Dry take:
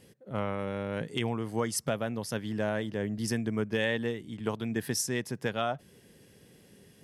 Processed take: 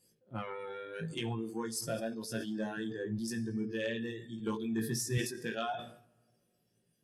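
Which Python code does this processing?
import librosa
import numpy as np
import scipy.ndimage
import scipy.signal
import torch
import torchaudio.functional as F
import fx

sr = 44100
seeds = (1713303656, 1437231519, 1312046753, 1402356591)

y = fx.notch(x, sr, hz=2000.0, q=9.5)
y = fx.doubler(y, sr, ms=18.0, db=-4.5)
y = fx.rider(y, sr, range_db=5, speed_s=0.5)
y = fx.hum_notches(y, sr, base_hz=50, count=4)
y = fx.room_shoebox(y, sr, seeds[0], volume_m3=3800.0, walls='mixed', distance_m=0.86)
y = fx.noise_reduce_blind(y, sr, reduce_db=17)
y = 10.0 ** (-18.0 / 20.0) * np.tanh(y / 10.0 ** (-18.0 / 20.0))
y = fx.peak_eq(y, sr, hz=130.0, db=14.5, octaves=0.66, at=(2.77, 5.18))
y = fx.sustainer(y, sr, db_per_s=94.0)
y = F.gain(torch.from_numpy(y), -6.0).numpy()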